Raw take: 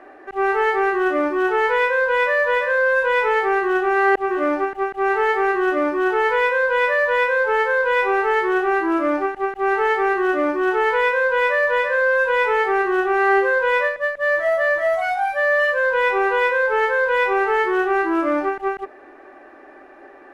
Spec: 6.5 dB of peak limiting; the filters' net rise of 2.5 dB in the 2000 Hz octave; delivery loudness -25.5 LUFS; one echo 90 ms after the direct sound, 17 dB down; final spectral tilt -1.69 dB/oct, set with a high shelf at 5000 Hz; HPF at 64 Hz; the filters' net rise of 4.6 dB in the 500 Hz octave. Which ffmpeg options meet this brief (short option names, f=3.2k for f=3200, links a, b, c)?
-af "highpass=64,equalizer=f=500:t=o:g=5.5,equalizer=f=2k:t=o:g=4,highshelf=f=5k:g=-9,alimiter=limit=-12dB:level=0:latency=1,aecho=1:1:90:0.141,volume=-6.5dB"